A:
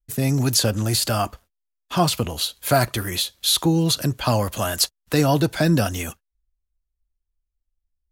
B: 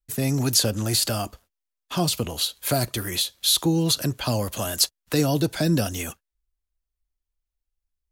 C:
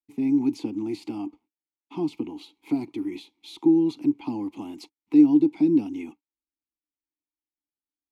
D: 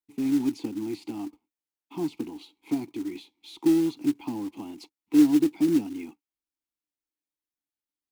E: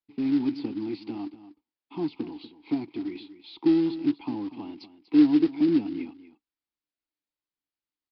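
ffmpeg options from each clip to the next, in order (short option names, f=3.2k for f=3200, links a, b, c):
-filter_complex "[0:a]lowshelf=f=230:g=-5,acrossover=split=560|3000[a][b][c];[b]acompressor=threshold=-34dB:ratio=6[d];[a][d][c]amix=inputs=3:normalize=0"
-filter_complex "[0:a]asplit=3[a][b][c];[a]bandpass=f=300:t=q:w=8,volume=0dB[d];[b]bandpass=f=870:t=q:w=8,volume=-6dB[e];[c]bandpass=f=2.24k:t=q:w=8,volume=-9dB[f];[d][e][f]amix=inputs=3:normalize=0,equalizer=f=310:w=0.78:g=9.5,volume=1.5dB"
-af "acrusher=bits=5:mode=log:mix=0:aa=0.000001,volume=-2.5dB"
-af "aecho=1:1:241:0.188,aresample=11025,aresample=44100"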